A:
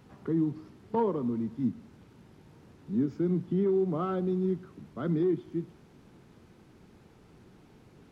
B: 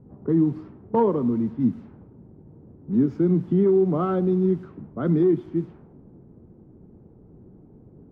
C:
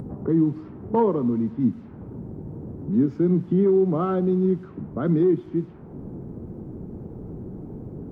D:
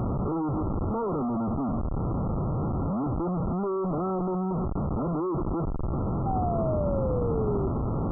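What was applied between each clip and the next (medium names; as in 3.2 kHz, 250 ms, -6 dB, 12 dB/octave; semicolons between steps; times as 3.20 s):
level-controlled noise filter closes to 400 Hz, open at -27.5 dBFS; treble shelf 2.4 kHz -10 dB; trim +8 dB
upward compressor, threshold -23 dBFS
Schmitt trigger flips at -38 dBFS; painted sound fall, 6.26–7.68 s, 380–790 Hz -27 dBFS; brick-wall FIR low-pass 1.4 kHz; trim -3 dB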